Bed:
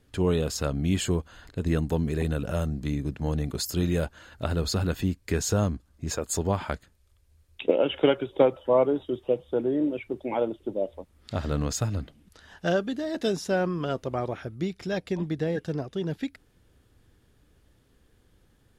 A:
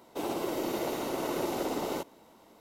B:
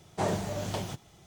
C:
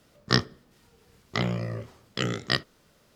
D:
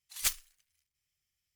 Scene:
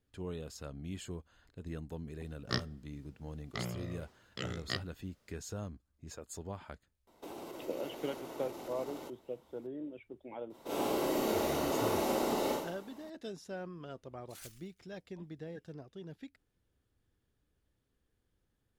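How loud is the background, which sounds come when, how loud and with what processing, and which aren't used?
bed −17 dB
0:02.20: mix in C −12 dB
0:07.07: mix in A −8.5 dB + downward compressor, threshold −33 dBFS
0:10.50: mix in A −7.5 dB + four-comb reverb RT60 0.71 s, combs from 28 ms, DRR −7.5 dB
0:14.19: mix in D −8.5 dB + downward compressor, threshold −39 dBFS
not used: B

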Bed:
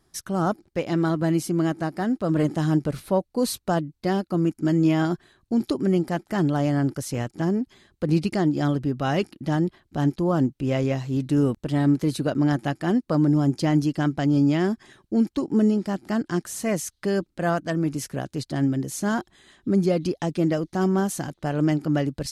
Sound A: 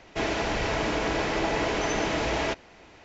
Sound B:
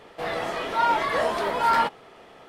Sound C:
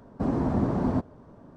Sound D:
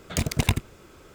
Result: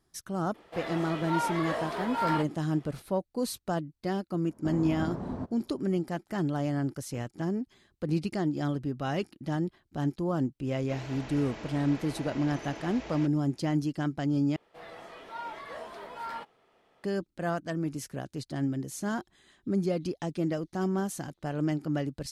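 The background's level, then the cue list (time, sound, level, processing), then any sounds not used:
bed −7.5 dB
0:00.54: mix in B −9 dB
0:04.45: mix in C −10 dB
0:10.73: mix in A −16 dB
0:14.56: overwrite with B −17.5 dB
not used: D

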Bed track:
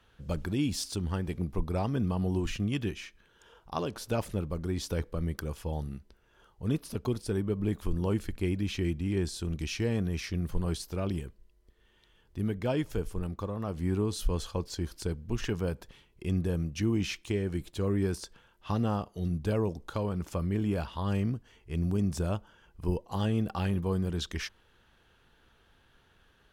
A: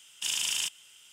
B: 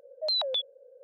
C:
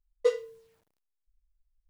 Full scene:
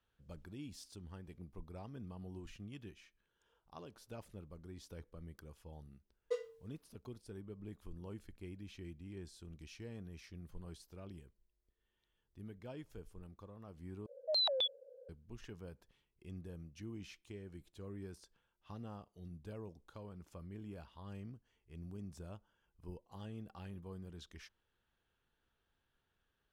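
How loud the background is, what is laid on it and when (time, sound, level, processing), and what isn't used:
bed track −19 dB
0:06.06: mix in C −13 dB
0:14.06: overwrite with B −5 dB + low-shelf EQ 190 Hz +10.5 dB
not used: A

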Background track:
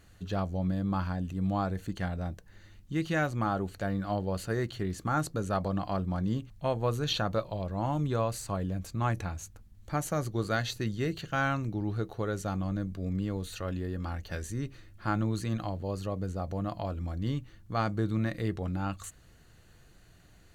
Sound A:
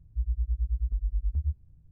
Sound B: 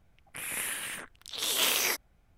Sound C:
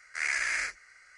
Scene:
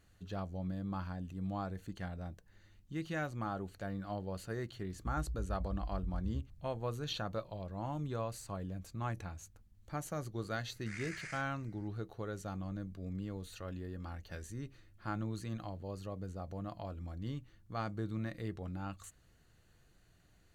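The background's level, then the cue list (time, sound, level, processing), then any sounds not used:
background track −9 dB
0:04.90: mix in A −2.5 dB + downward compressor 3 to 1, threshold −36 dBFS
0:10.71: mix in C −16.5 dB
not used: B

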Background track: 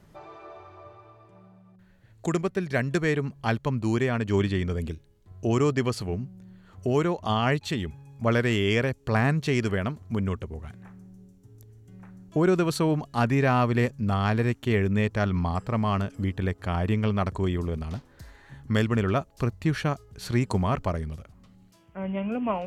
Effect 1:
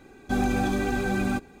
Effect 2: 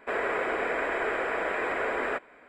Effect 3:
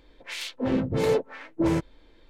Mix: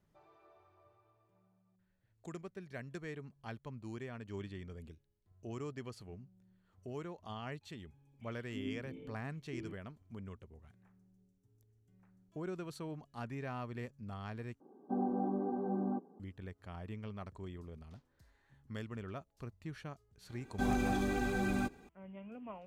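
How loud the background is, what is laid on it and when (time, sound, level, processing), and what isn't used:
background track −20 dB
0:07.93: mix in 3 −14.5 dB + formant resonators in series i
0:14.60: overwrite with 1 −8.5 dB + elliptic band-pass filter 180–990 Hz
0:20.29: mix in 1 −8 dB
not used: 2

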